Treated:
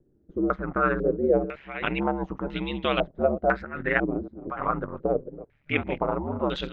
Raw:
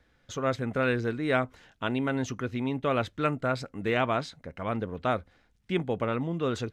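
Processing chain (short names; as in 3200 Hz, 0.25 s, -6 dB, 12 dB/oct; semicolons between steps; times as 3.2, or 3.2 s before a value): reverse delay 0.389 s, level -13 dB; ring modulator 70 Hz; stepped low-pass 2 Hz 340–3300 Hz; gain +2.5 dB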